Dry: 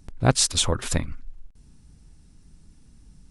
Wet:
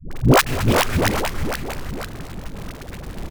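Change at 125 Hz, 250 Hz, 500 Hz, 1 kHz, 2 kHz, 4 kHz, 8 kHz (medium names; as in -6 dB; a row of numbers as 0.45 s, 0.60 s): +6.0 dB, +9.5 dB, +9.0 dB, +10.5 dB, +12.0 dB, +0.5 dB, -3.5 dB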